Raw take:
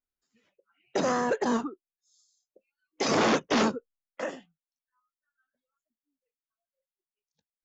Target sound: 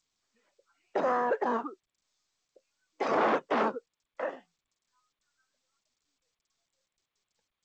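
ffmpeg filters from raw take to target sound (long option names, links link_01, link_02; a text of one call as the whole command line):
ffmpeg -i in.wav -filter_complex "[0:a]asplit=2[link_01][link_02];[link_02]highpass=frequency=720:poles=1,volume=7dB,asoftclip=type=tanh:threshold=-16dB[link_03];[link_01][link_03]amix=inputs=2:normalize=0,lowpass=frequency=1300:poles=1,volume=-6dB,bandpass=frequency=860:width_type=q:width=0.56:csg=0,volume=1.5dB" -ar 16000 -c:a g722 out.g722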